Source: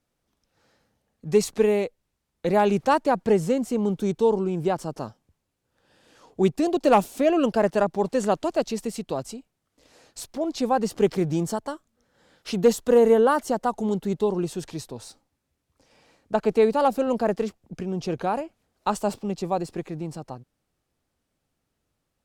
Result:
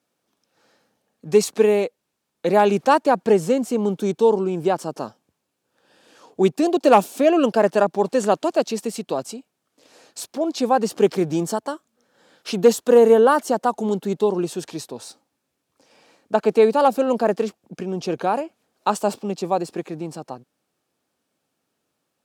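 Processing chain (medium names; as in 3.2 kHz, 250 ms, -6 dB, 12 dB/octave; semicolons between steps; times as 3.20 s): high-pass 210 Hz 12 dB/octave; band-stop 2 kHz, Q 17; trim +4.5 dB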